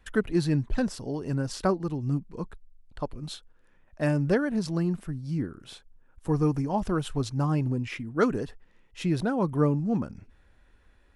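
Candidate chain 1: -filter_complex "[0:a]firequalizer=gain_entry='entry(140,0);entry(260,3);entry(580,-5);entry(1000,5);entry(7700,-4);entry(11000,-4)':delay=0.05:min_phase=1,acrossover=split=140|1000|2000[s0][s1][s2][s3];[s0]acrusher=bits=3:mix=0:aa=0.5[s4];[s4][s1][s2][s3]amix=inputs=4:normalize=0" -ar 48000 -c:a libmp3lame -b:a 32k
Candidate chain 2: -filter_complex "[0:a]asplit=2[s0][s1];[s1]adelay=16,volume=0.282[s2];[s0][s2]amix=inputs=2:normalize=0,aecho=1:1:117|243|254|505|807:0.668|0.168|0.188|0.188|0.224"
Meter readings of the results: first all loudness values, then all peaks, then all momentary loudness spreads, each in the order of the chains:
-29.0 LUFS, -27.0 LUFS; -9.5 dBFS, -8.5 dBFS; 15 LU, 14 LU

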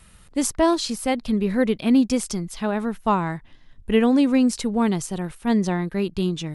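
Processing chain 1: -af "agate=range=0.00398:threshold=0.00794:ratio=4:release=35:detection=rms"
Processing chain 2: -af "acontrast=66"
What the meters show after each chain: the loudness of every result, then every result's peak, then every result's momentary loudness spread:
-22.5 LUFS, -16.5 LUFS; -7.0 dBFS, -3.5 dBFS; 9 LU, 8 LU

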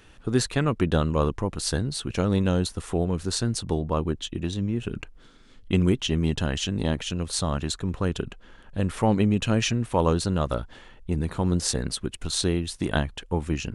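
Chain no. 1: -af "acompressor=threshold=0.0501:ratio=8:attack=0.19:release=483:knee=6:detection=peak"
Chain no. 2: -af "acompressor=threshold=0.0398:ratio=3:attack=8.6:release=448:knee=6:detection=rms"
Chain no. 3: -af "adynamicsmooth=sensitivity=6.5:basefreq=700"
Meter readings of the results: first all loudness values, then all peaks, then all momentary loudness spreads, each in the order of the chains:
-36.5 LUFS, -34.0 LUFS, -26.5 LUFS; -21.0 dBFS, -13.5 dBFS, -8.5 dBFS; 6 LU, 5 LU, 8 LU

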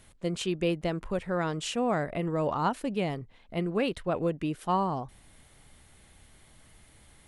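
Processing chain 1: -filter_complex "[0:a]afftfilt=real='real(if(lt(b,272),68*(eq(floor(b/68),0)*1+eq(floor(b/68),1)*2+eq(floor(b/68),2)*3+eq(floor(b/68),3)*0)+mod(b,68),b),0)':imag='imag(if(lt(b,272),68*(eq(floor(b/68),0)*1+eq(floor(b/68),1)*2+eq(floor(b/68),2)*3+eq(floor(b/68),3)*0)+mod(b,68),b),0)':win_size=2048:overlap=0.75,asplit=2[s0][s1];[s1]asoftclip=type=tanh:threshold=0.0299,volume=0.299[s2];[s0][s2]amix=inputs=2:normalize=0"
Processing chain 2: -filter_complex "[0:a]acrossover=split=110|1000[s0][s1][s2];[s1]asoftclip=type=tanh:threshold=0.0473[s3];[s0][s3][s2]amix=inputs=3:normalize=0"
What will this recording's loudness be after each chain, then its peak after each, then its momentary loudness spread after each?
-25.5 LUFS, -33.0 LUFS; -14.5 dBFS, -17.0 dBFS; 5 LU, 5 LU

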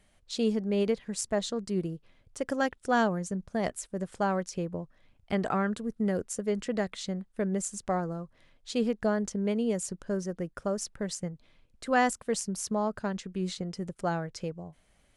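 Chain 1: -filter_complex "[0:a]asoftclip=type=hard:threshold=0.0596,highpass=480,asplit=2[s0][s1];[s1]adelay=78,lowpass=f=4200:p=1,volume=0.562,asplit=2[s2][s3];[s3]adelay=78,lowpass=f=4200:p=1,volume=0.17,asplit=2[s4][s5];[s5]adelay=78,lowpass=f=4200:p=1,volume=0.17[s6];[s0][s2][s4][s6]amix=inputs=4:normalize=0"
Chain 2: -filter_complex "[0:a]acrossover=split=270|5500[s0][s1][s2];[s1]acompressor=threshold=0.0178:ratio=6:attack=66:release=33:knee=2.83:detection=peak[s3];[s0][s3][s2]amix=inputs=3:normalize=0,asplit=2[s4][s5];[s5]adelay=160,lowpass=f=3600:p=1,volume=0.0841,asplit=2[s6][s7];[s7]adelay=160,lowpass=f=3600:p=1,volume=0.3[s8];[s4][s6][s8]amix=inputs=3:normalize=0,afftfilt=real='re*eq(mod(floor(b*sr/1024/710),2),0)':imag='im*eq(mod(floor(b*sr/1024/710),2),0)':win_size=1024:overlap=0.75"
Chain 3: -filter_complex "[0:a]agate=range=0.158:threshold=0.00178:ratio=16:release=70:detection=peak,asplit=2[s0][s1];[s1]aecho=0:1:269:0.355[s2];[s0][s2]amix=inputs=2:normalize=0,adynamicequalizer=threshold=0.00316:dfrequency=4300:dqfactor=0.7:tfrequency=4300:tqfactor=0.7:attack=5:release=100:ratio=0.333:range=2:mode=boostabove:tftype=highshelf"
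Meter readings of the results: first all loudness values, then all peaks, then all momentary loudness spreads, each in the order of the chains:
-35.5 LUFS, -33.0 LUFS, -30.5 LUFS; -17.5 dBFS, -16.5 dBFS, -10.0 dBFS; 11 LU, 9 LU, 11 LU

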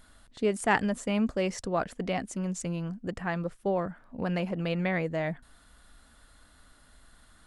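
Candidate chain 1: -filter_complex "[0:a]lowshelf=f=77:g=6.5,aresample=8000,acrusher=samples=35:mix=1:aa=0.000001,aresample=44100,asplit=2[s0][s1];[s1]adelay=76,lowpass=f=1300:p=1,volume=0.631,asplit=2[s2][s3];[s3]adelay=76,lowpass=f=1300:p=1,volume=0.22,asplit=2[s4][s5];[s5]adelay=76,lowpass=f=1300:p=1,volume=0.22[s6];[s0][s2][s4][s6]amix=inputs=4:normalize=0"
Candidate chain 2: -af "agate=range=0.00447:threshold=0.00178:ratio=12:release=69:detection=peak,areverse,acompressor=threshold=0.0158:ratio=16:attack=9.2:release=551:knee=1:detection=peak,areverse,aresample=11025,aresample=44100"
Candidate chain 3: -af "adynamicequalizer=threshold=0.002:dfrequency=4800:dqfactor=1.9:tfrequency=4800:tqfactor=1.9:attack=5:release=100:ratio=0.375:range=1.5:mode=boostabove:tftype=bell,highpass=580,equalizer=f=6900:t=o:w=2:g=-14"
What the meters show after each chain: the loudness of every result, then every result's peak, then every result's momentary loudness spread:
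-32.5 LUFS, -42.5 LUFS, -36.5 LUFS; -11.5 dBFS, -26.0 dBFS, -12.0 dBFS; 7 LU, 3 LU, 15 LU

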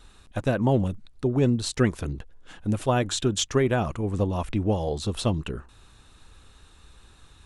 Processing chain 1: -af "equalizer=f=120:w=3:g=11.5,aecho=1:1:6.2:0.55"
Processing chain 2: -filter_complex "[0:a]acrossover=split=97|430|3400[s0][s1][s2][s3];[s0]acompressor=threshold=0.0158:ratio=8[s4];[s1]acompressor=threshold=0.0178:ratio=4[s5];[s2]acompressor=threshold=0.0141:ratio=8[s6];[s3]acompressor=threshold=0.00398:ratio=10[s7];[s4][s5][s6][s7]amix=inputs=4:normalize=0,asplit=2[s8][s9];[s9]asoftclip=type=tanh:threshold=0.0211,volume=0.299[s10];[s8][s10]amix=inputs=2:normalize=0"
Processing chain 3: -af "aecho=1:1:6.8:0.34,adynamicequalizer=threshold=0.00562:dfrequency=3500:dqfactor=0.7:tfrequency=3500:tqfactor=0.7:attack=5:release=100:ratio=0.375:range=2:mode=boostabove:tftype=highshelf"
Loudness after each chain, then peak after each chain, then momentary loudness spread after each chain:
-20.5 LUFS, -33.5 LUFS, -25.5 LUFS; -4.0 dBFS, -16.5 dBFS, -9.5 dBFS; 13 LU, 20 LU, 12 LU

